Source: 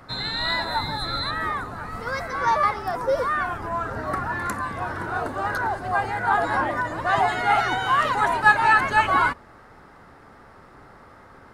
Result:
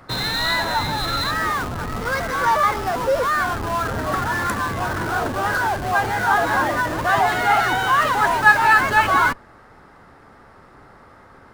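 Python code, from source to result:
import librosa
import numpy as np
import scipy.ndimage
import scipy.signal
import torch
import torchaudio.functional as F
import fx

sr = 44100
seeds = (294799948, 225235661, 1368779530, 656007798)

p1 = fx.dynamic_eq(x, sr, hz=1600.0, q=5.0, threshold_db=-37.0, ratio=4.0, max_db=3)
p2 = fx.schmitt(p1, sr, flips_db=-32.0)
p3 = p1 + (p2 * librosa.db_to_amplitude(-7.5))
y = p3 * librosa.db_to_amplitude(1.0)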